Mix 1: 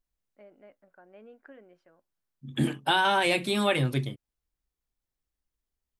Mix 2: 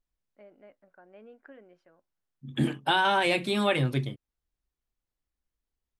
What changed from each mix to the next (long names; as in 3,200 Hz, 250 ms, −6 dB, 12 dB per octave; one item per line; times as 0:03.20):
second voice: add high-shelf EQ 7,700 Hz −8.5 dB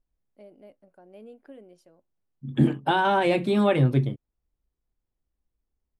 first voice: remove low-pass with resonance 1,600 Hz, resonance Q 2.1
master: add tilt shelving filter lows +7 dB, about 1,300 Hz